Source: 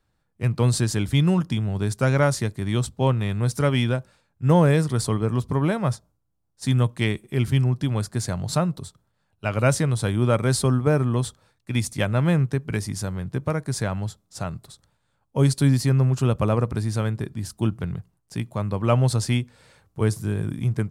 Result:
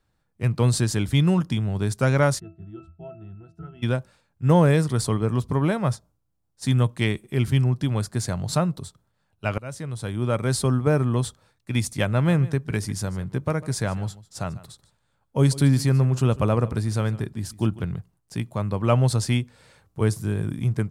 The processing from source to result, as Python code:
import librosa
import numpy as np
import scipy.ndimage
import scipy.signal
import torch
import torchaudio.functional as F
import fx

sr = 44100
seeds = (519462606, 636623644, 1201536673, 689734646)

y = fx.octave_resonator(x, sr, note='E', decay_s=0.27, at=(2.38, 3.82), fade=0.02)
y = fx.echo_single(y, sr, ms=148, db=-18.5, at=(12.12, 17.88))
y = fx.edit(y, sr, fx.fade_in_from(start_s=9.58, length_s=1.67, curve='qsin', floor_db=-23.5), tone=tone)